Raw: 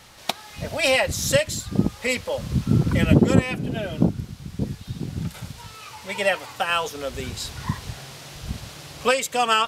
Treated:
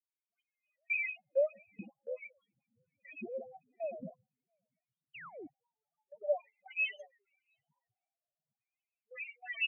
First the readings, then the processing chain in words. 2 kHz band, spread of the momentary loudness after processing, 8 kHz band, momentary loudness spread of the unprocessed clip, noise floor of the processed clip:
-12.5 dB, 19 LU, under -40 dB, 17 LU, under -85 dBFS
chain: minimum comb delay 0.34 ms; LFO band-pass square 0.47 Hz 710–2100 Hz; dispersion highs, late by 0.111 s, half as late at 980 Hz; loudest bins only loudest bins 2; echo 0.697 s -16.5 dB; painted sound fall, 5.13–5.47, 260–3200 Hz -40 dBFS; gate -44 dBFS, range -17 dB; low shelf 450 Hz -6 dB; rotary speaker horn 1 Hz; low shelf 130 Hz +7.5 dB; three-band expander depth 40%

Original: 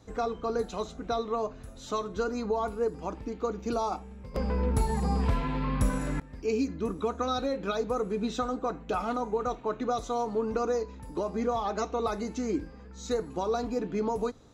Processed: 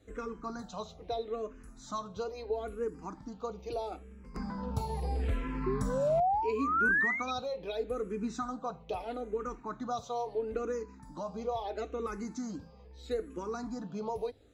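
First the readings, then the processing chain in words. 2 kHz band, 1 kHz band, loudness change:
+8.0 dB, -3.0 dB, -3.5 dB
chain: painted sound rise, 5.66–7.31, 370–2500 Hz -23 dBFS; endless phaser -0.76 Hz; gain -3.5 dB

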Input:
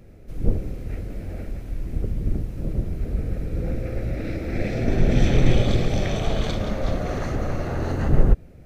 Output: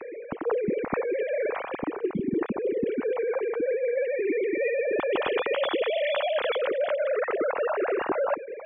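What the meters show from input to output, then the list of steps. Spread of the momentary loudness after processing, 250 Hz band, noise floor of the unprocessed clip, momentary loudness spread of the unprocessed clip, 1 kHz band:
3 LU, -5.0 dB, -44 dBFS, 13 LU, +3.0 dB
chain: sine-wave speech; reverse; compressor 10:1, threshold -31 dBFS, peak gain reduction 19 dB; reverse; gain +7 dB

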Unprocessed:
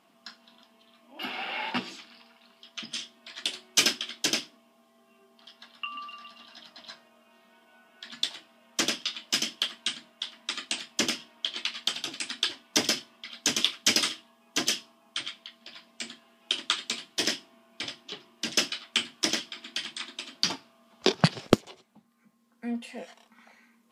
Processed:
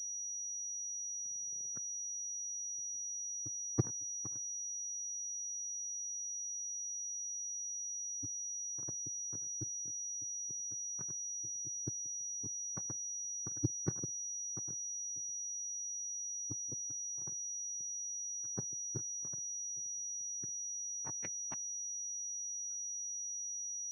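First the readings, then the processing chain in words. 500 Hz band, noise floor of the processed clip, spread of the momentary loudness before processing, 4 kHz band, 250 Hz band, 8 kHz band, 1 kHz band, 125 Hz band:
-18.5 dB, -42 dBFS, 20 LU, under -30 dB, -14.5 dB, +1.5 dB, -22.5 dB, -6.5 dB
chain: spectrum mirrored in octaves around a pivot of 580 Hz; power-law curve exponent 3; HPF 120 Hz 24 dB/oct; pulse-width modulation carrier 5800 Hz; gain -6.5 dB

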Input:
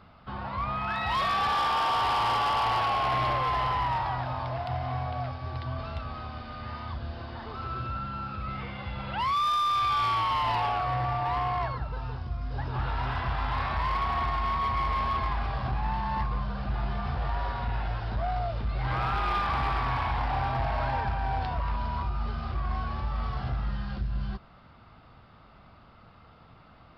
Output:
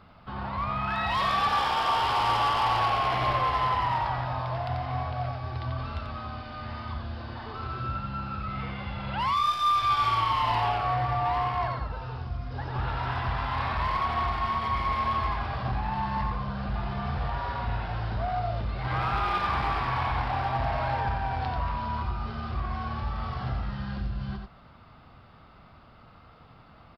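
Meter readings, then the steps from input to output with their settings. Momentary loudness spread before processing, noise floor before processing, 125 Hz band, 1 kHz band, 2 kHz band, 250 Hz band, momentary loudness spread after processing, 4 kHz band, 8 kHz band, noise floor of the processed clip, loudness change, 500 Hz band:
11 LU, -54 dBFS, +1.0 dB, +1.0 dB, +1.0 dB, +2.0 dB, 11 LU, +1.0 dB, n/a, -53 dBFS, +1.0 dB, +1.0 dB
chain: echo 89 ms -5 dB

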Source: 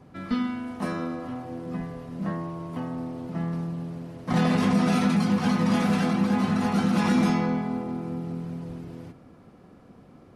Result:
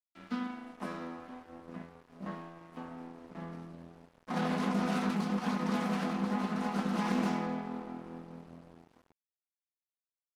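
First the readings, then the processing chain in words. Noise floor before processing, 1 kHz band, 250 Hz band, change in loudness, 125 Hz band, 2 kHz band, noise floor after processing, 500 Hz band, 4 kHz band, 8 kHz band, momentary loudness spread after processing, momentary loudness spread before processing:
-52 dBFS, -6.5 dB, -10.0 dB, -8.5 dB, -12.5 dB, -7.5 dB, under -85 dBFS, -8.0 dB, -9.0 dB, -9.5 dB, 18 LU, 14 LU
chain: steep high-pass 170 Hz 96 dB/oct; crossover distortion -39 dBFS; dynamic EQ 970 Hz, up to +4 dB, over -44 dBFS, Q 1.1; Doppler distortion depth 0.24 ms; gain -8.5 dB

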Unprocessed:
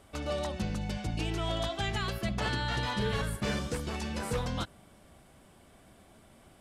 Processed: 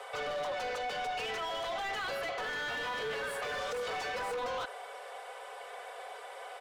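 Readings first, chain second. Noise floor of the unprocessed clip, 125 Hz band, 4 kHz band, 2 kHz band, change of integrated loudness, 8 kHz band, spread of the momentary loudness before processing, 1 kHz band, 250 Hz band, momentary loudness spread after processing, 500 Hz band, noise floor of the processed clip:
-59 dBFS, -23.0 dB, -2.5 dB, +2.0 dB, -3.5 dB, -4.5 dB, 4 LU, +2.5 dB, -17.5 dB, 10 LU, +0.5 dB, -47 dBFS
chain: steep high-pass 390 Hz 96 dB/oct; comb 4 ms, depth 81%; overdrive pedal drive 23 dB, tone 1300 Hz, clips at -23 dBFS; in parallel at -10 dB: soft clip -39.5 dBFS, distortion -7 dB; on the sum: limiter -30.5 dBFS, peak gain reduction 8.5 dB

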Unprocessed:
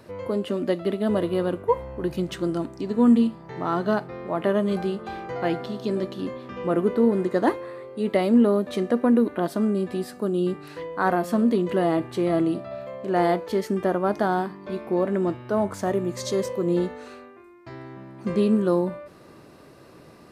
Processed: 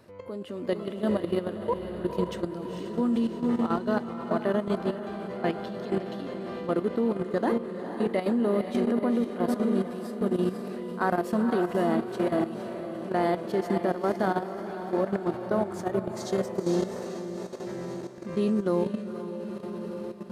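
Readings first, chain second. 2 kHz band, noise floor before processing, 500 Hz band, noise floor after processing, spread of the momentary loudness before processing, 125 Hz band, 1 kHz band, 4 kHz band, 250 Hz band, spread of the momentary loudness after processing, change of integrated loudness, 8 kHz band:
-3.5 dB, -49 dBFS, -4.0 dB, -37 dBFS, 12 LU, -4.0 dB, -3.5 dB, -4.5 dB, -4.5 dB, 10 LU, -4.5 dB, n/a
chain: diffused feedback echo 0.488 s, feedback 64%, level -5 dB; level quantiser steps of 11 dB; gain -2 dB

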